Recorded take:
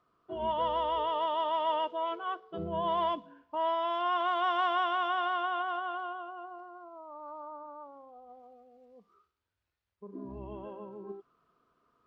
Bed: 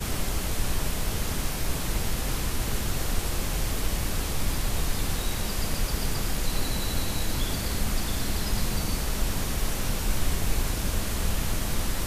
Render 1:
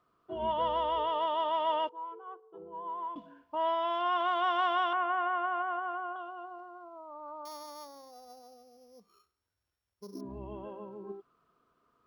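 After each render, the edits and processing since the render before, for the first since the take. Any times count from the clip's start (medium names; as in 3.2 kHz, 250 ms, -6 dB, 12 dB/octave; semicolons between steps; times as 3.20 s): 1.89–3.16 s: two resonant band-passes 630 Hz, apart 0.94 oct; 4.93–6.16 s: steep low-pass 2.5 kHz; 7.45–10.21 s: sorted samples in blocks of 8 samples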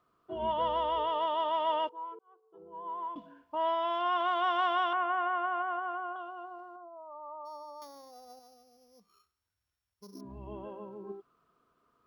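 2.19–2.94 s: fade in; 6.76–7.82 s: spectral contrast enhancement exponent 2; 8.39–10.47 s: peaking EQ 410 Hz -7 dB 1.7 oct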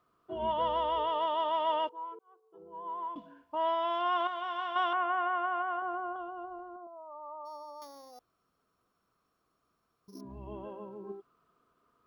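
4.27–4.76 s: feedback comb 96 Hz, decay 0.33 s, mix 70%; 5.82–6.87 s: tilt EQ -3.5 dB/octave; 8.19–10.08 s: room tone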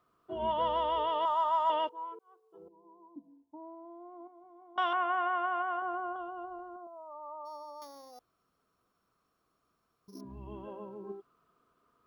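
1.25–1.70 s: FFT filter 160 Hz 0 dB, 320 Hz -13 dB, 1.2 kHz +6 dB, 2.3 kHz -8 dB, 3.2 kHz -8 dB, 7.3 kHz +12 dB; 2.68–4.78 s: cascade formant filter u; 10.24–10.68 s: peaking EQ 620 Hz -7 dB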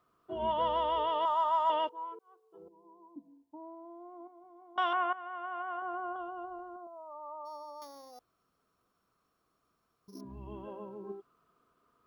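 5.13–6.20 s: fade in, from -16 dB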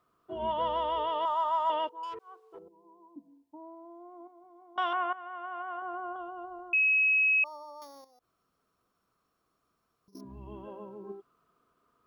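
2.03–2.59 s: overdrive pedal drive 19 dB, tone 3.3 kHz, clips at -33 dBFS; 6.73–7.44 s: bleep 2.56 kHz -21.5 dBFS; 8.04–10.15 s: compression 12:1, threshold -60 dBFS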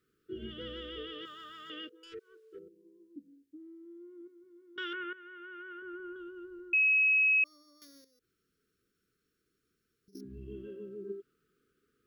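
elliptic band-stop 420–1500 Hz, stop band 50 dB; peaking EQ 560 Hz +8 dB 0.75 oct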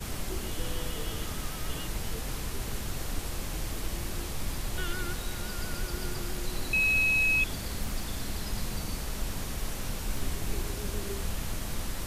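add bed -6.5 dB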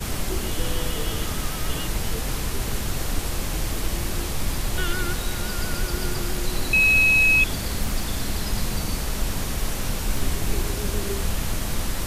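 trim +8 dB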